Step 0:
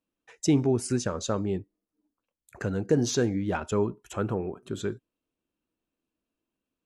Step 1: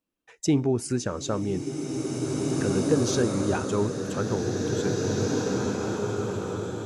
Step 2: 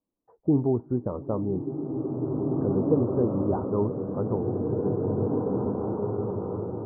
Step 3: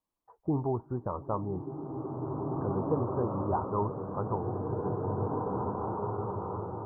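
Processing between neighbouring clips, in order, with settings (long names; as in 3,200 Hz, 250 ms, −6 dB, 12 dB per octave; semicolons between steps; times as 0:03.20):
slow-attack reverb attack 2,280 ms, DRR −1.5 dB
Butterworth low-pass 1,100 Hz 48 dB per octave
octave-band graphic EQ 125/250/500/1,000 Hz −3/−9/−6/+8 dB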